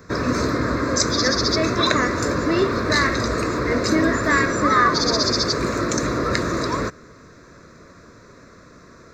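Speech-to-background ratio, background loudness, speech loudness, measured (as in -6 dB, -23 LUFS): -3.0 dB, -21.0 LUFS, -24.0 LUFS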